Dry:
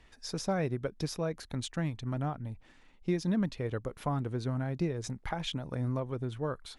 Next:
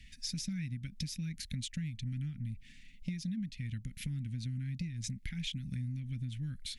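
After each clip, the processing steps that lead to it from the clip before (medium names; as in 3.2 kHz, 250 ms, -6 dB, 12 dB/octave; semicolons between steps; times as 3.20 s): elliptic band-stop 220–2100 Hz, stop band 40 dB; compression 10:1, threshold -42 dBFS, peak gain reduction 15 dB; trim +7 dB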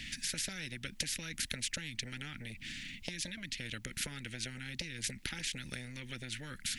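treble shelf 3.4 kHz -8.5 dB; spectrum-flattening compressor 4:1; trim +8.5 dB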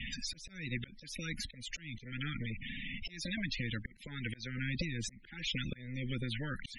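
loudest bins only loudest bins 32; rotary cabinet horn 0.85 Hz; slow attack 301 ms; trim +10 dB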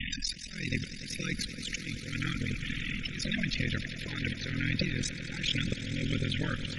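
ring modulator 21 Hz; echo with a slow build-up 96 ms, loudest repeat 5, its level -15.5 dB; trim +8.5 dB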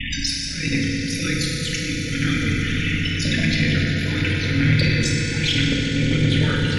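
FDN reverb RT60 3 s, high-frequency decay 0.65×, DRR -4 dB; saturation -15 dBFS, distortion -23 dB; trim +7.5 dB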